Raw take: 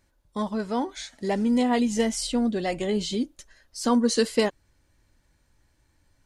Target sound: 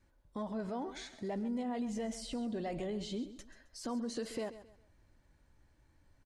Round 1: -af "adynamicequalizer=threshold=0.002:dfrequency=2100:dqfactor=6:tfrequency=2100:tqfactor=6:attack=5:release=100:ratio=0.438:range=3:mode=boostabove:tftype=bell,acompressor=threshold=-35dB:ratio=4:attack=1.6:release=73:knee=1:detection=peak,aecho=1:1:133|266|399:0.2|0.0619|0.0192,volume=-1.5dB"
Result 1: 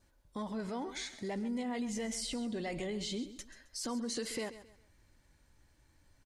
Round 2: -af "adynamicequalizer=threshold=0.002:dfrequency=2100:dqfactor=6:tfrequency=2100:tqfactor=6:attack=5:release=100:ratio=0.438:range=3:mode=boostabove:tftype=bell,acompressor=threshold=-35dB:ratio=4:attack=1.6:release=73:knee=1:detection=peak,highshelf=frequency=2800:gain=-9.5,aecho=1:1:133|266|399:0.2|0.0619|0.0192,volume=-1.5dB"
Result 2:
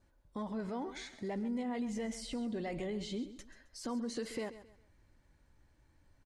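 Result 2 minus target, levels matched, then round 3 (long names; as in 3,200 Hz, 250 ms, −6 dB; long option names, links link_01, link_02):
2,000 Hz band +3.0 dB
-af "adynamicequalizer=threshold=0.002:dfrequency=660:dqfactor=6:tfrequency=660:tqfactor=6:attack=5:release=100:ratio=0.438:range=3:mode=boostabove:tftype=bell,acompressor=threshold=-35dB:ratio=4:attack=1.6:release=73:knee=1:detection=peak,highshelf=frequency=2800:gain=-9.5,aecho=1:1:133|266|399:0.2|0.0619|0.0192,volume=-1.5dB"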